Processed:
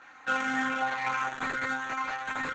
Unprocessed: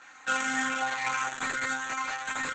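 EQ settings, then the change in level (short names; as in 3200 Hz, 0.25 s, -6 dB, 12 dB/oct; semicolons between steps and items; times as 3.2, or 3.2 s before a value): high shelf 2300 Hz -9 dB; bell 7700 Hz -10 dB 0.49 oct; +2.5 dB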